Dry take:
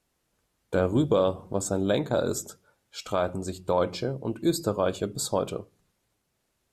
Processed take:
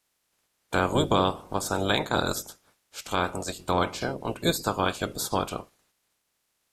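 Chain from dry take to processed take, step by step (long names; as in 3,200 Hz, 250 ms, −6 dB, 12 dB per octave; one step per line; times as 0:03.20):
ceiling on every frequency bin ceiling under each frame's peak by 20 dB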